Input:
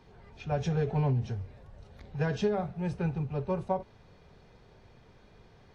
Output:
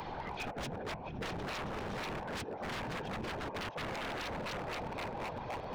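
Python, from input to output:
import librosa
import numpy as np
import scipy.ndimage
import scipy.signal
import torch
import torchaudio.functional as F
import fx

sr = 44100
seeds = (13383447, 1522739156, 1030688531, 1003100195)

y = fx.reverse_delay_fb(x, sr, ms=257, feedback_pct=76, wet_db=-10.0)
y = scipy.signal.sosfilt(scipy.signal.butter(2, 3100.0, 'lowpass', fs=sr, output='sos'), y)
y = fx.peak_eq(y, sr, hz=860.0, db=11.0, octaves=0.78)
y = 10.0 ** (-14.5 / 20.0) * np.tanh(y / 10.0 ** (-14.5 / 20.0))
y = fx.over_compress(y, sr, threshold_db=-34.0, ratio=-0.5)
y = fx.echo_thinned(y, sr, ms=666, feedback_pct=38, hz=650.0, wet_db=-14.5)
y = fx.whisperise(y, sr, seeds[0])
y = fx.low_shelf(y, sr, hz=230.0, db=-5.0)
y = 10.0 ** (-38.0 / 20.0) * (np.abs((y / 10.0 ** (-38.0 / 20.0) + 3.0) % 4.0 - 2.0) - 1.0)
y = fx.band_squash(y, sr, depth_pct=70)
y = y * 10.0 ** (3.5 / 20.0)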